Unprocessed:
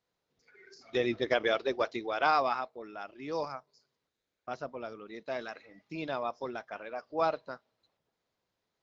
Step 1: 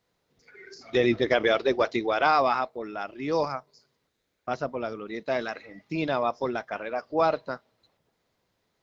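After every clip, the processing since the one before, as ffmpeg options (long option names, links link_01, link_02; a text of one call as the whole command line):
ffmpeg -i in.wav -filter_complex "[0:a]equalizer=frequency=2000:width=6.7:gain=2.5,asplit=2[link_01][link_02];[link_02]alimiter=limit=-24dB:level=0:latency=1:release=15,volume=3dB[link_03];[link_01][link_03]amix=inputs=2:normalize=0,lowshelf=frequency=340:gain=4" out.wav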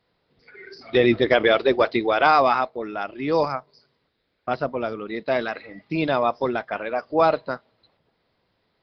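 ffmpeg -i in.wav -af "aresample=11025,aresample=44100,volume=5dB" out.wav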